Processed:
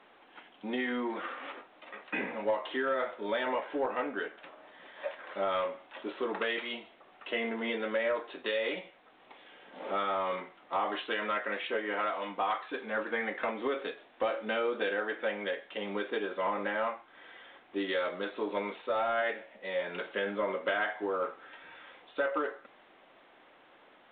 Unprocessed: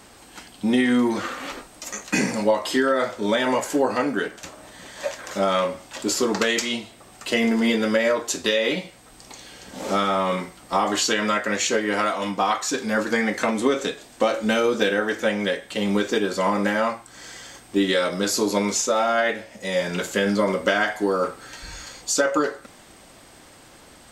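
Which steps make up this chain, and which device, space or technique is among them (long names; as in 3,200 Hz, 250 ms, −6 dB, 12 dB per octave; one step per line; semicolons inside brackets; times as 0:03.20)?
telephone (band-pass filter 380–3,100 Hz; soft clipping −12 dBFS, distortion −23 dB; level −8 dB; A-law companding 64 kbit/s 8,000 Hz)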